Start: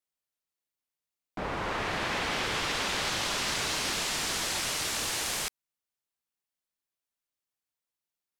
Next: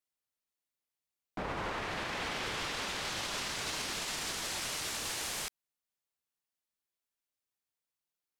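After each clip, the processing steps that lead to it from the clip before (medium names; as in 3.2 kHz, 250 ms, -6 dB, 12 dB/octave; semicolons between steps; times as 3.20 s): peak limiter -26 dBFS, peak gain reduction 8 dB; trim -2 dB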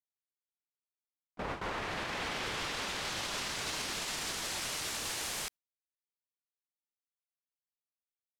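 gate with hold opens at -28 dBFS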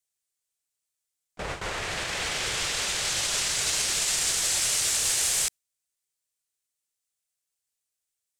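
graphic EQ 250/1000/8000 Hz -10/-6/+10 dB; trim +7.5 dB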